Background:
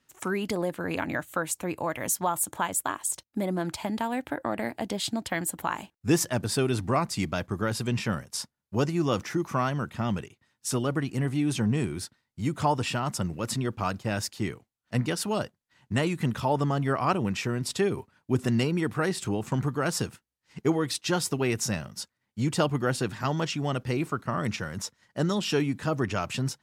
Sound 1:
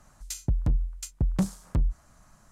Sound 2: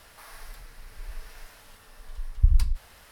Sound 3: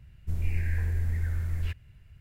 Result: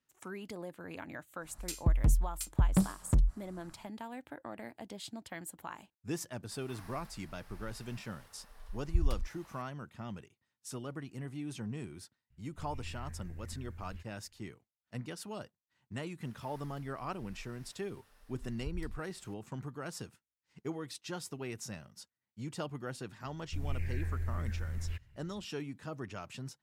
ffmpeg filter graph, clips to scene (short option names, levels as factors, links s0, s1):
-filter_complex "[2:a]asplit=2[s0][s1];[3:a]asplit=2[s2][s3];[0:a]volume=0.188[s4];[1:a]equalizer=f=6400:t=o:w=0.2:g=-10.5[s5];[s0]equalizer=f=890:t=o:w=1.5:g=5[s6];[s1]alimiter=limit=0.15:level=0:latency=1:release=392[s7];[s5]atrim=end=2.51,asetpts=PTS-STARTPTS,volume=0.841,afade=t=in:d=0.1,afade=t=out:st=2.41:d=0.1,adelay=1380[s8];[s6]atrim=end=3.11,asetpts=PTS-STARTPTS,volume=0.316,afade=t=in:d=0.004:c=hsin,afade=t=out:st=3.106:d=0.004:c=hsin,adelay=6510[s9];[s2]atrim=end=2.2,asetpts=PTS-STARTPTS,volume=0.133,afade=t=in:d=0.004:c=hsin,afade=t=out:st=2.196:d=0.004:c=hsin,adelay=12300[s10];[s7]atrim=end=3.11,asetpts=PTS-STARTPTS,volume=0.2,afade=t=in:d=0.004:c=hsin,afade=t=out:st=3.106:d=0.004:c=hsin,adelay=16230[s11];[s3]atrim=end=2.2,asetpts=PTS-STARTPTS,volume=0.422,afade=t=in:d=0.004:c=hsin,afade=t=out:st=2.196:d=0.004:c=hsin,adelay=23250[s12];[s4][s8][s9][s10][s11][s12]amix=inputs=6:normalize=0"